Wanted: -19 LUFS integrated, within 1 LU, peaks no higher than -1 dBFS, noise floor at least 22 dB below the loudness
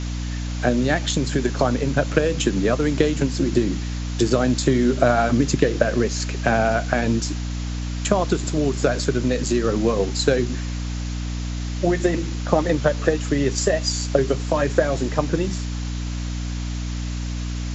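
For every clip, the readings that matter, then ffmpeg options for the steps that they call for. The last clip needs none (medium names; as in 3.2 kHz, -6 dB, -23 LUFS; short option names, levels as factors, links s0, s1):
hum 60 Hz; highest harmonic 300 Hz; hum level -24 dBFS; noise floor -27 dBFS; noise floor target -44 dBFS; loudness -22.0 LUFS; peak level -2.0 dBFS; loudness target -19.0 LUFS
-> -af "bandreject=f=60:t=h:w=6,bandreject=f=120:t=h:w=6,bandreject=f=180:t=h:w=6,bandreject=f=240:t=h:w=6,bandreject=f=300:t=h:w=6"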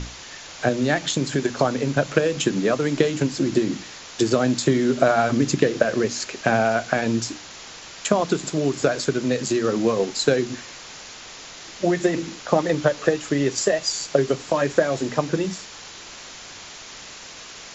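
hum not found; noise floor -40 dBFS; noise floor target -44 dBFS
-> -af "afftdn=nr=6:nf=-40"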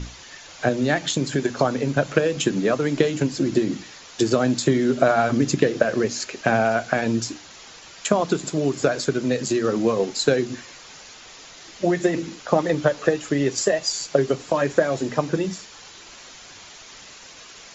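noise floor -44 dBFS; noise floor target -45 dBFS
-> -af "afftdn=nr=6:nf=-44"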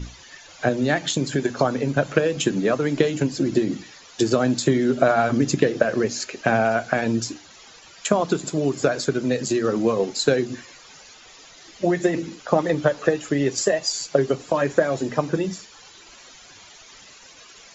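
noise floor -47 dBFS; loudness -22.5 LUFS; peak level -3.0 dBFS; loudness target -19.0 LUFS
-> -af "volume=1.5,alimiter=limit=0.891:level=0:latency=1"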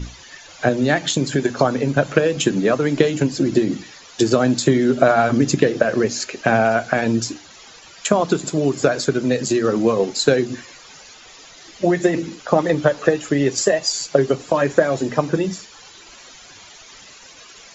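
loudness -19.0 LUFS; peak level -1.0 dBFS; noise floor -44 dBFS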